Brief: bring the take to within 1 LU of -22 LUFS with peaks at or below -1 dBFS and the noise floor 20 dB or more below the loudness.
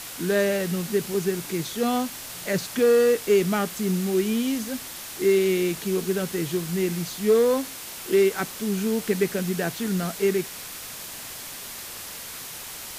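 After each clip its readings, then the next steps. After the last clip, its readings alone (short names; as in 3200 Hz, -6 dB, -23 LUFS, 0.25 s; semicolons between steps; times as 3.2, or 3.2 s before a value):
noise floor -38 dBFS; noise floor target -45 dBFS; loudness -25.0 LUFS; peak -10.5 dBFS; loudness target -22.0 LUFS
-> denoiser 7 dB, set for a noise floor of -38 dBFS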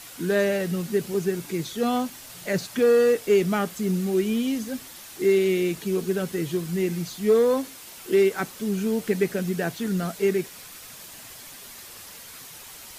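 noise floor -43 dBFS; noise floor target -45 dBFS
-> denoiser 6 dB, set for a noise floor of -43 dBFS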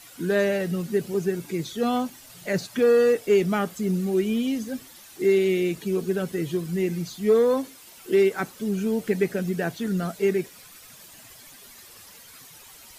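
noise floor -48 dBFS; loudness -24.5 LUFS; peak -10.5 dBFS; loudness target -22.0 LUFS
-> gain +2.5 dB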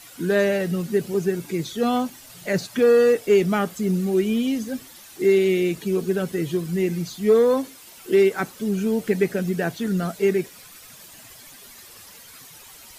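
loudness -22.0 LUFS; peak -8.0 dBFS; noise floor -46 dBFS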